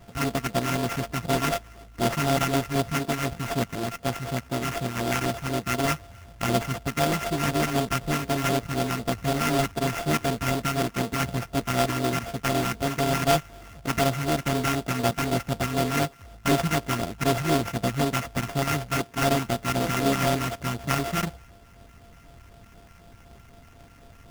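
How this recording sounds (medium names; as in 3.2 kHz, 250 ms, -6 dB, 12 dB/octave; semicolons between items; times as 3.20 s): a buzz of ramps at a fixed pitch in blocks of 64 samples; phasing stages 4, 4 Hz, lowest notch 490–3100 Hz; aliases and images of a low sample rate 4.1 kHz, jitter 20%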